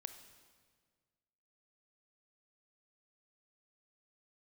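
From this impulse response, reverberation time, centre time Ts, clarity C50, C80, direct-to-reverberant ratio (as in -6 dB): 1.7 s, 17 ms, 9.5 dB, 11.0 dB, 8.5 dB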